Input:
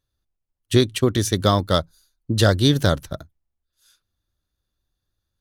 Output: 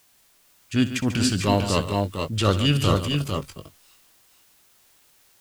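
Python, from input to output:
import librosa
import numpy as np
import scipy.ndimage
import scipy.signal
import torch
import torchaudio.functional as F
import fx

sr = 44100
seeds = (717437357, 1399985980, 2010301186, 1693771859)

p1 = fx.low_shelf(x, sr, hz=190.0, db=-5.5)
p2 = fx.quant_dither(p1, sr, seeds[0], bits=10, dither='triangular')
p3 = fx.formant_shift(p2, sr, semitones=-4)
p4 = fx.transient(p3, sr, attack_db=-8, sustain_db=3)
y = p4 + fx.echo_multitap(p4, sr, ms=(64, 142, 450, 470), db=(-15.0, -12.0, -5.5, -12.5), dry=0)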